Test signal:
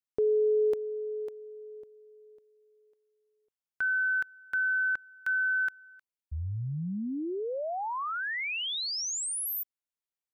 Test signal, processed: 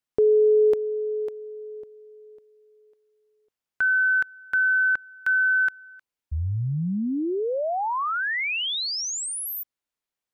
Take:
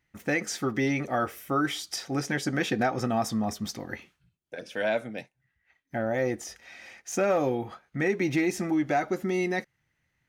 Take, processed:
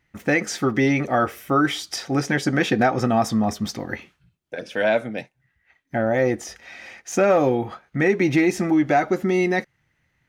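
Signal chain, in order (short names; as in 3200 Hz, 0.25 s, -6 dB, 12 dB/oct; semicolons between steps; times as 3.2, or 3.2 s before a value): high shelf 5500 Hz -6.5 dB; gain +7.5 dB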